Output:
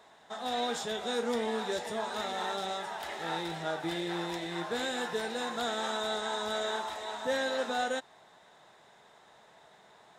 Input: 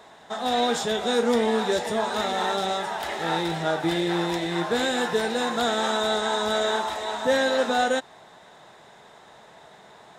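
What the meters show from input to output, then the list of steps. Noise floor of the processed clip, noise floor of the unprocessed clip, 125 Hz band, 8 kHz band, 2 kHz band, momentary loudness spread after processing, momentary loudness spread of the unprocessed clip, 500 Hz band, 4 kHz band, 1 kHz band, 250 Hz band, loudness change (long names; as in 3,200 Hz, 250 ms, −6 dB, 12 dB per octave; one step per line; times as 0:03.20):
−59 dBFS, −51 dBFS, −11.0 dB, −8.0 dB, −8.5 dB, 5 LU, 5 LU, −9.5 dB, −8.0 dB, −9.0 dB, −10.5 dB, −9.0 dB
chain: low-shelf EQ 490 Hz −3.5 dB
level −8 dB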